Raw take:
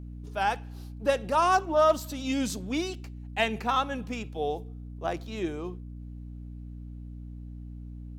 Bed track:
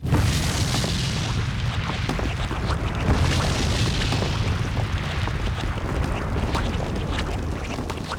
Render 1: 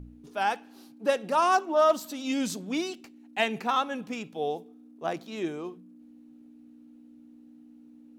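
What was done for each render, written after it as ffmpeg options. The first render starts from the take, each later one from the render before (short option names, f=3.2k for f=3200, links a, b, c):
-af "bandreject=f=60:t=h:w=4,bandreject=f=120:t=h:w=4,bandreject=f=180:t=h:w=4"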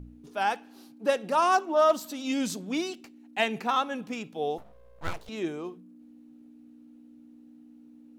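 -filter_complex "[0:a]asettb=1/sr,asplit=3[a][b][c];[a]atrim=end=4.584[d];[b]atrim=start=4.58:end=5.29,asetpts=PTS-STARTPTS,afade=t=in:d=0.004:c=qsin,afade=t=out:st=0.706:d=0.004:c=qsin,aeval=exprs='abs(val(0))':c=same[e];[c]atrim=start=5.286[f];[d][e]acrossfade=d=0.004:c1=hsin:c2=qsin[g];[g][f]acrossfade=d=0.004:c1=qsin:c2=hsin"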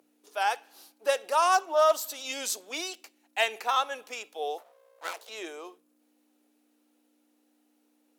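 -af "highpass=f=460:w=0.5412,highpass=f=460:w=1.3066,aemphasis=mode=production:type=cd"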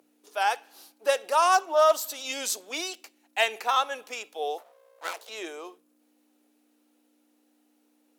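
-af "volume=2dB"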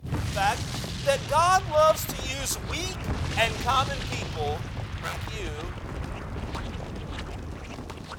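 -filter_complex "[1:a]volume=-9.5dB[a];[0:a][a]amix=inputs=2:normalize=0"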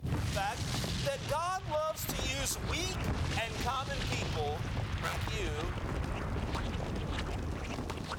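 -af "alimiter=limit=-16.5dB:level=0:latency=1:release=341,acompressor=threshold=-30dB:ratio=10"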